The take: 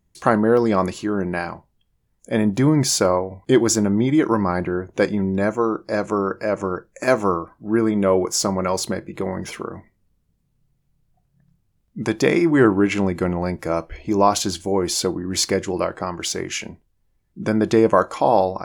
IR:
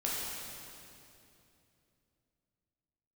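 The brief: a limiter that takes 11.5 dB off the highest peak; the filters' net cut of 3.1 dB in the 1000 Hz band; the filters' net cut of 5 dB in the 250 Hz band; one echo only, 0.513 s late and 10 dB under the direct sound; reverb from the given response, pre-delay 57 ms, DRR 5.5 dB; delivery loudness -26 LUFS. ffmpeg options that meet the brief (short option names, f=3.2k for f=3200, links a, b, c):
-filter_complex "[0:a]equalizer=f=250:t=o:g=-7,equalizer=f=1k:t=o:g=-3.5,alimiter=limit=-16dB:level=0:latency=1,aecho=1:1:513:0.316,asplit=2[a][b];[1:a]atrim=start_sample=2205,adelay=57[c];[b][c]afir=irnorm=-1:irlink=0,volume=-11.5dB[d];[a][d]amix=inputs=2:normalize=0,volume=-0.5dB"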